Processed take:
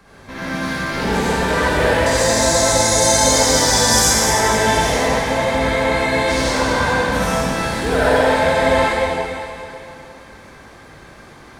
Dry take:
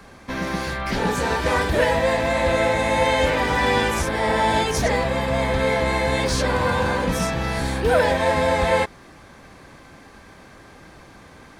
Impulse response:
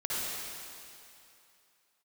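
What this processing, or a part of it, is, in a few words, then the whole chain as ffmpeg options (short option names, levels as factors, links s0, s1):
stairwell: -filter_complex "[0:a]asettb=1/sr,asplit=3[s0][s1][s2];[s0]atrim=end=2.064[s3];[s1]atrim=start=2.06:end=3.99,asetpts=PTS-STARTPTS,afade=t=in:d=0.004:c=qsin,afade=t=out:st=1.926:d=0.004:c=qsin,highshelf=f=3900:t=q:w=3:g=14[s4];[s2]atrim=start=3.986[s5];[s3][s4]acrossfade=d=0.004:c1=hsin:c2=qsin[s6];[s6][s5]acrossfade=d=0.004:c1=qsin:c2=hsin[s7];[1:a]atrim=start_sample=2205[s8];[s7][s8]afir=irnorm=-1:irlink=0,volume=0.75"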